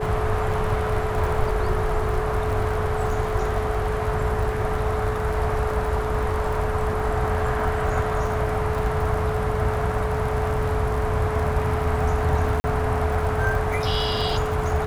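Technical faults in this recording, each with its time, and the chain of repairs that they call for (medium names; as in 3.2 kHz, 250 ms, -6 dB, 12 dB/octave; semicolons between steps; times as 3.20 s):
crackle 47 per s -29 dBFS
whine 430 Hz -27 dBFS
12.60–12.64 s: dropout 40 ms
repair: de-click; band-stop 430 Hz, Q 30; interpolate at 12.60 s, 40 ms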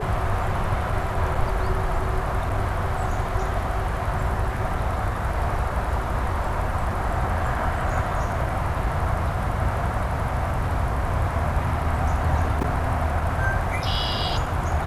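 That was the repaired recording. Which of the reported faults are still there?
nothing left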